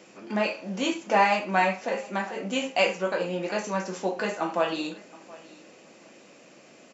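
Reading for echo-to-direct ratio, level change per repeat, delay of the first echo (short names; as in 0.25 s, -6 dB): -21.5 dB, no steady repeat, 0.723 s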